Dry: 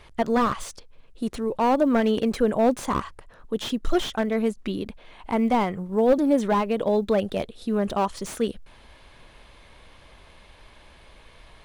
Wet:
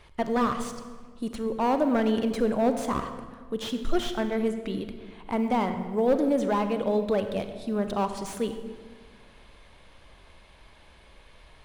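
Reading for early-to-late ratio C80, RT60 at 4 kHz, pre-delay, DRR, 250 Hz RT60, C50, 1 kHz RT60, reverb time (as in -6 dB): 10.0 dB, 1.1 s, 33 ms, 8.0 dB, 2.0 s, 8.5 dB, 1.5 s, 1.6 s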